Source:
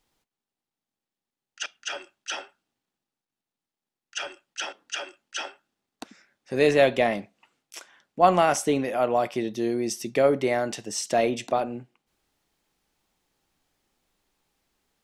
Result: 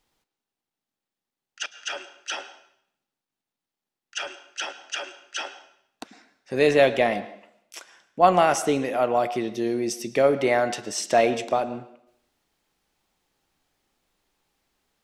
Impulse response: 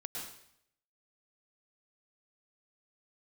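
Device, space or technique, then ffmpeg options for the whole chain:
filtered reverb send: -filter_complex "[0:a]asettb=1/sr,asplit=3[s0][s1][s2];[s0]atrim=end=10.364[s3];[s1]atrim=start=10.36:end=11.37,asetpts=PTS-STARTPTS,afade=t=in:d=0.004:c=qsin,afade=t=out:st=1.006:d=0.004:c=qsin,equalizer=f=1300:t=o:w=2.6:g=4[s4];[s2]atrim=start=11.366[s5];[s3][s4]acrossfade=d=0.004:c1=hsin:c2=qsin[s6];[s6][s5]acrossfade=d=0.004:c1=qsin:c2=hsin,asplit=2[s7][s8];[s8]highpass=300,lowpass=6600[s9];[1:a]atrim=start_sample=2205[s10];[s9][s10]afir=irnorm=-1:irlink=0,volume=0.299[s11];[s7][s11]amix=inputs=2:normalize=0"

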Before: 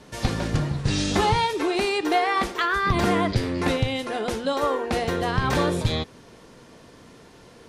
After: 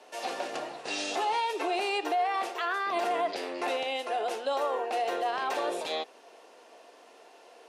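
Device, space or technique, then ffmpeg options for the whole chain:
laptop speaker: -af "highpass=f=360:w=0.5412,highpass=f=360:w=1.3066,equalizer=f=720:t=o:w=0.54:g=11,equalizer=f=2700:t=o:w=0.2:g=8,alimiter=limit=0.178:level=0:latency=1:release=38,volume=0.473"

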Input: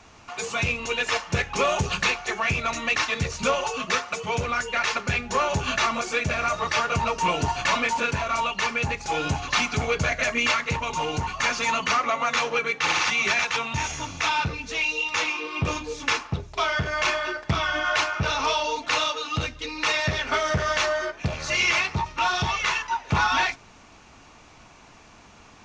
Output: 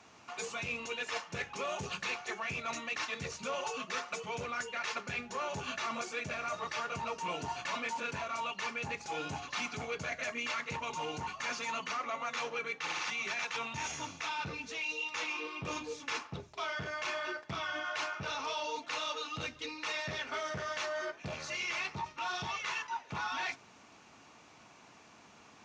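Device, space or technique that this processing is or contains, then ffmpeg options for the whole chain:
compression on the reversed sound: -af "areverse,acompressor=threshold=0.0447:ratio=6,areverse,highpass=140,volume=0.447"

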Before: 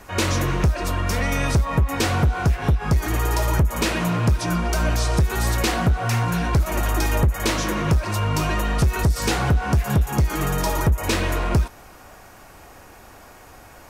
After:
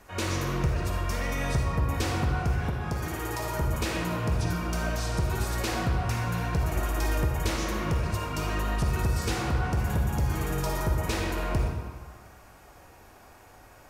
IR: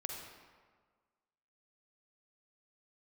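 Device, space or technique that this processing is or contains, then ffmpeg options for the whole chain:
stairwell: -filter_complex "[1:a]atrim=start_sample=2205[s0];[0:a][s0]afir=irnorm=-1:irlink=0,asettb=1/sr,asplit=3[s1][s2][s3];[s1]atrim=end=2.694[s4];[s2]atrim=start=2.69:end=3.62,asetpts=PTS-STARTPTS,afade=t=in:d=0.004:c=qsin,afade=t=out:st=0.926:d=0.004:c=qsin,highpass=f=130:p=1[s5];[s3]atrim=start=3.616[s6];[s4][s5]acrossfade=d=0.004:c1=hsin:c2=qsin[s7];[s7][s6]acrossfade=d=0.004:c1=qsin:c2=hsin,volume=0.447"

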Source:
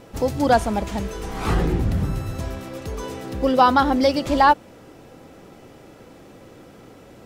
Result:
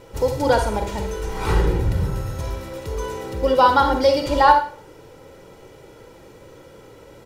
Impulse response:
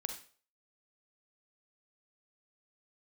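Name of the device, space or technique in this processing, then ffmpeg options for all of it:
microphone above a desk: -filter_complex "[0:a]aecho=1:1:2.1:0.54[s0];[1:a]atrim=start_sample=2205[s1];[s0][s1]afir=irnorm=-1:irlink=0"

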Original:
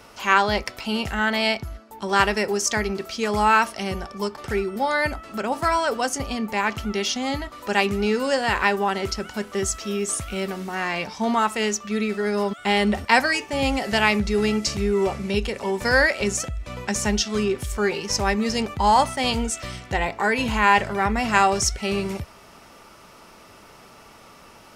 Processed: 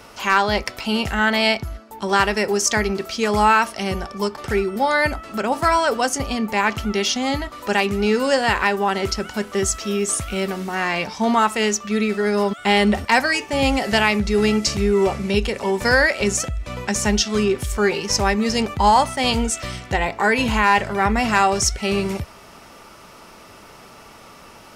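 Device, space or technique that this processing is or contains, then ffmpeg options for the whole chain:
clipper into limiter: -af "asoftclip=type=hard:threshold=0.473,alimiter=limit=0.335:level=0:latency=1:release=351,volume=1.58"

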